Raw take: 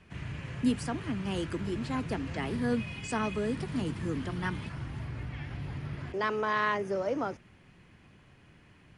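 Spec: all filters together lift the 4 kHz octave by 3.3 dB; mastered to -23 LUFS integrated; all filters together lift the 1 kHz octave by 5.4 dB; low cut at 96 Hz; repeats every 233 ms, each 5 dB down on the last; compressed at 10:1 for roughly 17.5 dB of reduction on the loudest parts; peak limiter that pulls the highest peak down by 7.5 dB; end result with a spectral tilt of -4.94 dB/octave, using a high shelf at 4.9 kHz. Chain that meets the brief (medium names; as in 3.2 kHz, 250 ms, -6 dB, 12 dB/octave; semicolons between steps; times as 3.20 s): high-pass 96 Hz; peaking EQ 1 kHz +6 dB; peaking EQ 4 kHz +6 dB; treble shelf 4.9 kHz -4 dB; compression 10:1, threshold -39 dBFS; peak limiter -36.5 dBFS; feedback delay 233 ms, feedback 56%, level -5 dB; trim +21 dB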